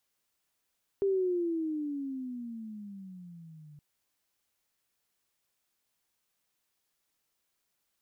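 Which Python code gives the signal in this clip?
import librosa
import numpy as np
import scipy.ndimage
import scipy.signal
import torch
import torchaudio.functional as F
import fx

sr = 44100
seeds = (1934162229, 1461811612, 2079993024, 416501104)

y = fx.riser_tone(sr, length_s=2.77, level_db=-24, wave='sine', hz=399.0, rise_st=-17.5, swell_db=-25.0)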